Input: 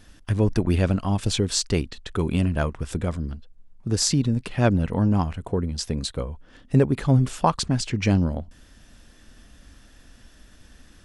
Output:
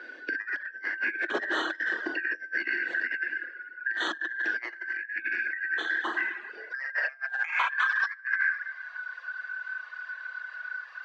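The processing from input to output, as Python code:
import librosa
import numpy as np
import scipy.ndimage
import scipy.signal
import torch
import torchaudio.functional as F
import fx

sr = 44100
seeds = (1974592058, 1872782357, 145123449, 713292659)

y = fx.band_shuffle(x, sr, order='3142')
y = 10.0 ** (-11.0 / 20.0) * (np.abs((y / 10.0 ** (-11.0 / 20.0) + 3.0) % 4.0 - 2.0) - 1.0)
y = fx.air_absorb(y, sr, metres=360.0)
y = fx.rev_schroeder(y, sr, rt60_s=1.2, comb_ms=25, drr_db=-1.5)
y = fx.over_compress(y, sr, threshold_db=-26.0, ratio=-0.5)
y = fx.dereverb_blind(y, sr, rt60_s=0.64)
y = scipy.signal.sosfilt(scipy.signal.ellip(3, 1.0, 40, [190.0, 7600.0], 'bandpass', fs=sr, output='sos'), y)
y = fx.filter_sweep_highpass(y, sr, from_hz=330.0, to_hz=1100.0, start_s=6.3, end_s=7.77, q=7.3)
y = fx.band_squash(y, sr, depth_pct=40)
y = F.gain(torch.from_numpy(y), -4.0).numpy()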